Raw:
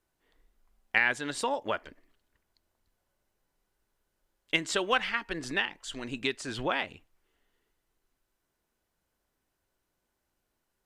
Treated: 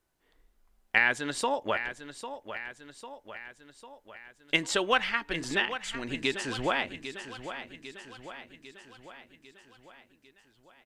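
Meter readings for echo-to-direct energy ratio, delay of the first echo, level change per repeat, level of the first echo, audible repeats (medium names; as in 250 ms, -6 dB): -9.5 dB, 799 ms, -5.0 dB, -11.0 dB, 5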